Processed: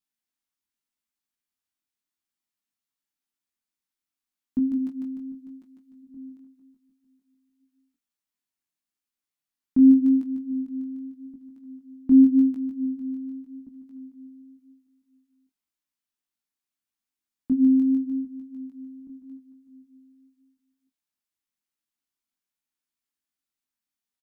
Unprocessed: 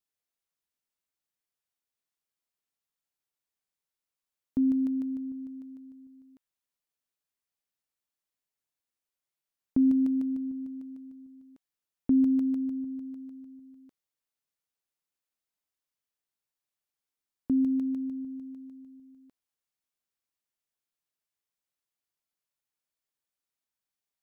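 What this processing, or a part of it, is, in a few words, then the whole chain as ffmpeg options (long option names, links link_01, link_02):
double-tracked vocal: -filter_complex "[0:a]equalizer=frequency=125:width_type=o:width=1:gain=-6,equalizer=frequency=250:width_type=o:width=1:gain=9,equalizer=frequency=500:width_type=o:width=1:gain=-10,asplit=3[link_01][link_02][link_03];[link_01]afade=type=out:start_time=4.75:duration=0.02[link_04];[link_02]aecho=1:1:5.6:0.68,afade=type=in:start_time=4.75:duration=0.02,afade=type=out:start_time=6.02:duration=0.02[link_05];[link_03]afade=type=in:start_time=6.02:duration=0.02[link_06];[link_04][link_05][link_06]amix=inputs=3:normalize=0,asplit=2[link_07][link_08];[link_08]adelay=26,volume=-12.5dB[link_09];[link_07][link_09]amix=inputs=2:normalize=0,asplit=2[link_10][link_11];[link_11]adelay=1574,volume=-22dB,highshelf=frequency=4000:gain=-35.4[link_12];[link_10][link_12]amix=inputs=2:normalize=0,flanger=delay=16.5:depth=7:speed=0.87,volume=3dB"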